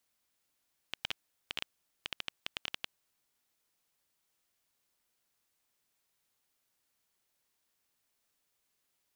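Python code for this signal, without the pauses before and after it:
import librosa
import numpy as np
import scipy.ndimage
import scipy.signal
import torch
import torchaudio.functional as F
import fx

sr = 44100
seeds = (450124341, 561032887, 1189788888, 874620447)

y = fx.geiger_clicks(sr, seeds[0], length_s=2.13, per_s=9.0, level_db=-17.0)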